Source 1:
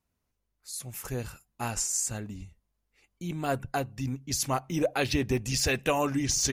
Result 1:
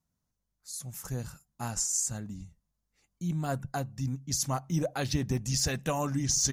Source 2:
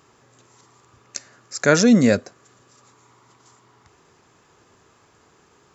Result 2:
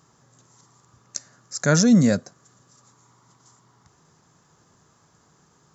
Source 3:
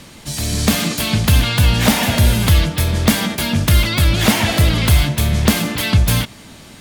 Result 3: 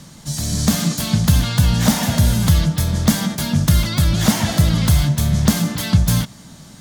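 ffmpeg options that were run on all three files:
-af "equalizer=f=160:t=o:w=0.67:g=9,equalizer=f=400:t=o:w=0.67:g=-5,equalizer=f=2500:t=o:w=0.67:g=-8,equalizer=f=6300:t=o:w=0.67:g=5,volume=0.668"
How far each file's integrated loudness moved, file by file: -1.5 LU, -3.5 LU, -1.5 LU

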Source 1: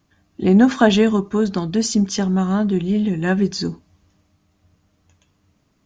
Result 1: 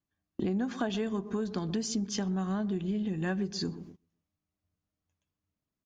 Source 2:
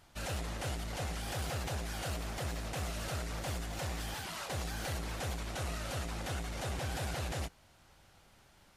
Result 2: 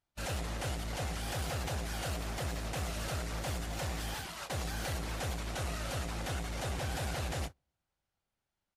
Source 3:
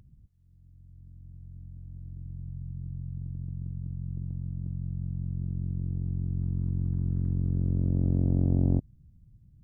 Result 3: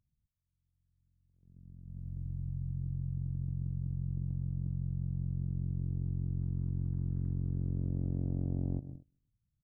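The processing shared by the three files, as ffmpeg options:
-filter_complex "[0:a]asplit=2[s0][s1];[s1]adelay=126,lowpass=f=830:p=1,volume=0.15,asplit=2[s2][s3];[s3]adelay=126,lowpass=f=830:p=1,volume=0.49,asplit=2[s4][s5];[s5]adelay=126,lowpass=f=830:p=1,volume=0.49,asplit=2[s6][s7];[s7]adelay=126,lowpass=f=830:p=1,volume=0.49[s8];[s2][s4][s6][s8]amix=inputs=4:normalize=0[s9];[s0][s9]amix=inputs=2:normalize=0,agate=range=0.0447:threshold=0.00891:ratio=16:detection=peak,acompressor=threshold=0.0251:ratio=6,asoftclip=type=hard:threshold=0.075,volume=1.19"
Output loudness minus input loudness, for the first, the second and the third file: -14.5 LU, +1.0 LU, -5.5 LU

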